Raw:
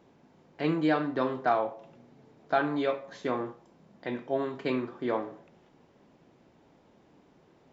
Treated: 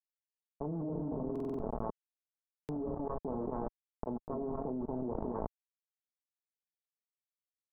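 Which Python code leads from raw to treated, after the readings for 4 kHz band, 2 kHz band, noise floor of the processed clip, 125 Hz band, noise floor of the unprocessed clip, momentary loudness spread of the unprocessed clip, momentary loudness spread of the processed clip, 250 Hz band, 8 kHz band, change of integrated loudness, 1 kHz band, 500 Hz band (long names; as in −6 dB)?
below −30 dB, below −25 dB, below −85 dBFS, −2.0 dB, −62 dBFS, 11 LU, 6 LU, −6.0 dB, can't be measured, −8.5 dB, −11.5 dB, −8.0 dB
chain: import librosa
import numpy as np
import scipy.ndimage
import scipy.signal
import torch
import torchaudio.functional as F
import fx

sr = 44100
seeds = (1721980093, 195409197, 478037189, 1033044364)

y = fx.self_delay(x, sr, depth_ms=0.91)
y = fx.dynamic_eq(y, sr, hz=740.0, q=2.4, threshold_db=-48.0, ratio=4.0, max_db=-5)
y = scipy.signal.sosfilt(scipy.signal.butter(2, 66.0, 'highpass', fs=sr, output='sos'), y)
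y = y + 10.0 ** (-6.0 / 20.0) * np.pad(y, (int(226 * sr / 1000.0), 0))[:len(y)]
y = fx.env_lowpass_down(y, sr, base_hz=470.0, full_db=-26.5)
y = np.where(np.abs(y) >= 10.0 ** (-35.5 / 20.0), y, 0.0)
y = scipy.signal.sosfilt(scipy.signal.butter(6, 940.0, 'lowpass', fs=sr, output='sos'), y)
y = fx.low_shelf(y, sr, hz=110.0, db=8.0)
y = y + 0.38 * np.pad(y, (int(4.6 * sr / 1000.0), 0))[:len(y)]
y = fx.level_steps(y, sr, step_db=19)
y = fx.buffer_glitch(y, sr, at_s=(1.31, 2.41), block=2048, repeats=5)
y = fx.env_flatten(y, sr, amount_pct=100)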